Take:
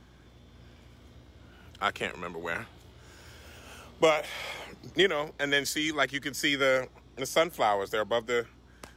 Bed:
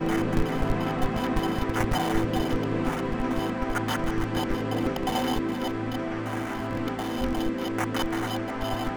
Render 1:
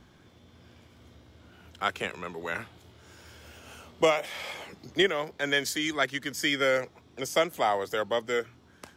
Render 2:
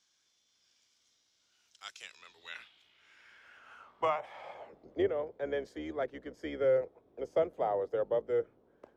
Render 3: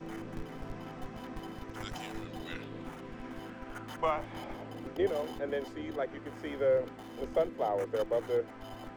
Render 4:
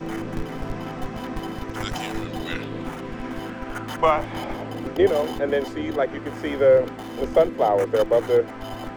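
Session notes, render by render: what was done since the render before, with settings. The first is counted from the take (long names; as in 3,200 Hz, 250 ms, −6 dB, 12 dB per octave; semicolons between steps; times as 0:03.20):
hum removal 60 Hz, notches 2
sub-octave generator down 2 octaves, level +4 dB; band-pass filter sweep 5,900 Hz → 500 Hz, 0:01.92–0:04.95
mix in bed −16.5 dB
level +12 dB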